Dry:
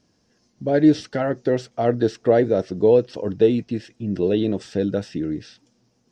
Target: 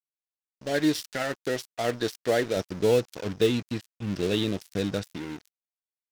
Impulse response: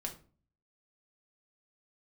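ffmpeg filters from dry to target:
-filter_complex "[0:a]asettb=1/sr,asplit=3[link_01][link_02][link_03];[link_01]atrim=end=2.564[link_04];[link_02]atrim=start=2.56:end=5.16,asetpts=PTS-STARTPTS,afade=type=in:duration=0.004:curve=qsin,afade=type=out:start_time=2.596:duration=0.004:curve=qsin,lowshelf=frequency=170:gain=11.5[link_05];[link_03]atrim=start=5.156[link_06];[link_04][link_05]acrossfade=duration=0.004:curve1=hsin:curve2=qsin[link_07];[link_07][link_06]acrossfade=duration=0.004:curve1=qsin:curve2=hsin,aeval=exprs='sgn(val(0))*max(abs(val(0))-0.0168,0)':channel_layout=same,tiltshelf=frequency=1500:gain=-10"

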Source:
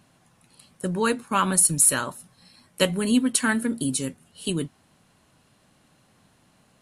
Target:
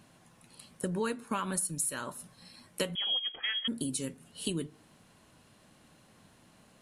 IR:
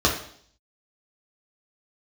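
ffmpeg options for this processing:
-filter_complex "[0:a]acompressor=threshold=-31dB:ratio=6,asplit=2[link_01][link_02];[1:a]atrim=start_sample=2205,lowpass=2500[link_03];[link_02][link_03]afir=irnorm=-1:irlink=0,volume=-33dB[link_04];[link_01][link_04]amix=inputs=2:normalize=0,asettb=1/sr,asplit=3[link_05][link_06][link_07];[link_05]atrim=end=2.954[link_08];[link_06]atrim=start=2.95:end=3.68,asetpts=PTS-STARTPTS,afade=type=in:duration=0.004:curve=qsin,afade=type=out:start_time=0.726:duration=0.004:curve=qsin,lowpass=frequency=3000:width_type=q:width=0.5098,lowpass=frequency=3000:width_type=q:width=0.6013,lowpass=frequency=3000:width_type=q:width=0.9,lowpass=frequency=3000:width_type=q:width=2.563,afreqshift=-3500[link_09];[link_07]atrim=start=3.676[link_10];[link_08][link_09]acrossfade=duration=0.004:curve1=hsin:curve2=qsin[link_11];[link_11][link_10]acrossfade=duration=0.004:curve1=qsin:curve2=hsin"

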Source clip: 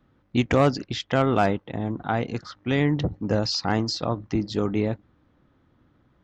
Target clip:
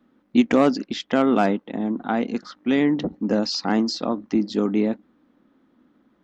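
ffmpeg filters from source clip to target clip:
ffmpeg -i in.wav -af "lowshelf=frequency=160:width_type=q:width=3:gain=-12" out.wav

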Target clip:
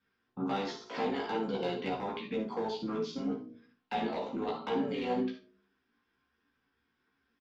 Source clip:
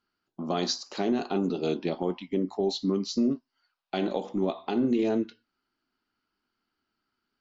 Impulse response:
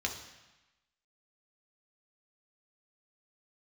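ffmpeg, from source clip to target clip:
-filter_complex "[0:a]lowpass=3900,bandreject=frequency=46.84:width_type=h:width=4,bandreject=frequency=93.68:width_type=h:width=4,bandreject=frequency=140.52:width_type=h:width=4,bandreject=frequency=187.36:width_type=h:width=4,bandreject=frequency=234.2:width_type=h:width=4,bandreject=frequency=281.04:width_type=h:width=4,bandreject=frequency=327.88:width_type=h:width=4,bandreject=frequency=374.72:width_type=h:width=4,bandreject=frequency=421.56:width_type=h:width=4,bandreject=frequency=468.4:width_type=h:width=4,bandreject=frequency=515.24:width_type=h:width=4,bandreject=frequency=562.08:width_type=h:width=4,bandreject=frequency=608.92:width_type=h:width=4,asplit=2[link_01][link_02];[link_02]asetrate=33038,aresample=44100,atempo=1.33484,volume=-7dB[link_03];[link_01][link_03]amix=inputs=2:normalize=0,acrossover=split=550|2300[link_04][link_05][link_06];[link_04]acompressor=threshold=-40dB:ratio=4[link_07];[link_05]acompressor=threshold=-38dB:ratio=4[link_08];[link_06]acompressor=threshold=-49dB:ratio=4[link_09];[link_07][link_08][link_09]amix=inputs=3:normalize=0,aemphasis=mode=reproduction:type=50kf,asetrate=49501,aresample=44100,atempo=0.890899,asplit=2[link_10][link_11];[link_11]aeval=exprs='0.0299*(abs(mod(val(0)/0.0299+3,4)-2)-1)':channel_layout=same,volume=-5dB[link_12];[link_10][link_12]amix=inputs=2:normalize=0,flanger=delay=15:depth=2.1:speed=2.1,aecho=1:1:55|74:0.266|0.133[link_13];[1:a]atrim=start_sample=2205,atrim=end_sample=3969[link_14];[link_13][link_14]afir=irnorm=-1:irlink=0"

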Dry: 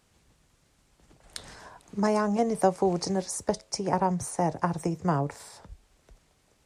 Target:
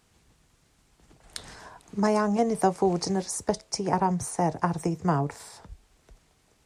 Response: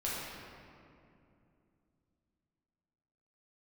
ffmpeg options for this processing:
-af "bandreject=frequency=560:width=12,volume=1.5dB"

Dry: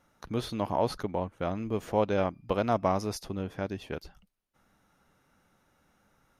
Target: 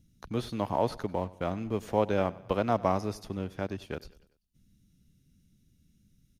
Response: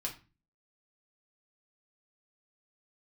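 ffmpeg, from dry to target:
-filter_complex "[0:a]acrossover=split=240|2800[link_01][link_02][link_03];[link_01]acompressor=mode=upward:threshold=-54dB:ratio=2.5[link_04];[link_02]aeval=exprs='sgn(val(0))*max(abs(val(0))-0.00211,0)':channel_layout=same[link_05];[link_03]alimiter=level_in=13.5dB:limit=-24dB:level=0:latency=1:release=81,volume=-13.5dB[link_06];[link_04][link_05][link_06]amix=inputs=3:normalize=0,aecho=1:1:97|194|291|388:0.0944|0.0472|0.0236|0.0118"

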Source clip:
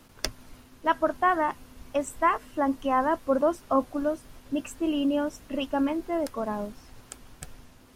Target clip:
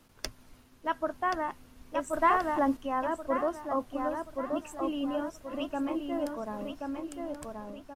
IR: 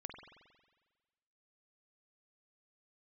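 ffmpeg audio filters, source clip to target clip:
-filter_complex "[0:a]asplit=2[link_01][link_02];[link_02]adelay=1079,lowpass=frequency=3300:poles=1,volume=-4dB,asplit=2[link_03][link_04];[link_04]adelay=1079,lowpass=frequency=3300:poles=1,volume=0.43,asplit=2[link_05][link_06];[link_06]adelay=1079,lowpass=frequency=3300:poles=1,volume=0.43,asplit=2[link_07][link_08];[link_08]adelay=1079,lowpass=frequency=3300:poles=1,volume=0.43,asplit=2[link_09][link_10];[link_10]adelay=1079,lowpass=frequency=3300:poles=1,volume=0.43[link_11];[link_01][link_03][link_05][link_07][link_09][link_11]amix=inputs=6:normalize=0,asettb=1/sr,asplit=3[link_12][link_13][link_14];[link_12]atrim=end=2.134[link_15];[link_13]atrim=start=2.13:end=2.77,asetpts=PTS-STARTPTS,afade=type=in:duration=0.004:curve=qsin,afade=type=out:start_time=0.636:duration=0.004:curve=qsin,acontrast=46[link_16];[link_14]atrim=start=2.766[link_17];[link_15][link_16]acrossfade=duration=0.004:curve1=hsin:curve2=qsin[link_18];[link_18][link_17]acrossfade=duration=0.004:curve1=qsin:curve2=hsin,volume=-7dB"

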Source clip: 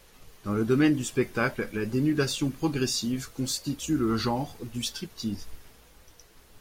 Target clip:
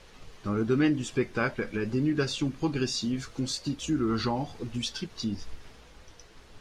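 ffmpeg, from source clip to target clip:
ffmpeg -i in.wav -filter_complex "[0:a]lowpass=5800,asplit=2[link_01][link_02];[link_02]acompressor=threshold=-36dB:ratio=6,volume=3dB[link_03];[link_01][link_03]amix=inputs=2:normalize=0,volume=-4dB" out.wav

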